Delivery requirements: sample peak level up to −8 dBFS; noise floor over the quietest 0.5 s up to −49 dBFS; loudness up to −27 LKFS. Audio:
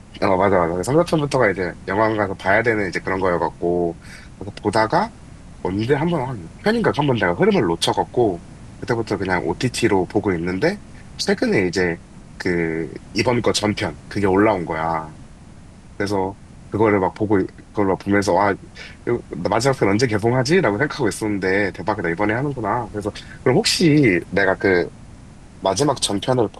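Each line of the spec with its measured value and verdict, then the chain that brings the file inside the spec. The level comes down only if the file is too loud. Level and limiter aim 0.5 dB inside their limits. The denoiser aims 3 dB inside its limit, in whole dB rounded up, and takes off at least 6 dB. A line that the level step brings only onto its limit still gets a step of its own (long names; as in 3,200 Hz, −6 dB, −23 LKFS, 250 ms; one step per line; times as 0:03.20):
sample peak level −4.0 dBFS: out of spec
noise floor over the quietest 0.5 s −42 dBFS: out of spec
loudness −20.0 LKFS: out of spec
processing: level −7.5 dB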